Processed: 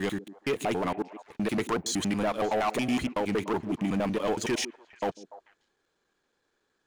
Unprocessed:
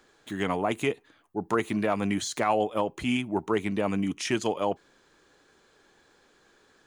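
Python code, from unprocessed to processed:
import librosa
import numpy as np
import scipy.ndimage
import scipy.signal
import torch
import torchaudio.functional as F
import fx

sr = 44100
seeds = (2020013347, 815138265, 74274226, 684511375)

y = fx.block_reorder(x, sr, ms=93.0, group=5)
y = fx.leveller(y, sr, passes=3)
y = fx.echo_stepped(y, sr, ms=146, hz=290.0, octaves=1.4, feedback_pct=70, wet_db=-12.0)
y = F.gain(torch.from_numpy(y), -8.5).numpy()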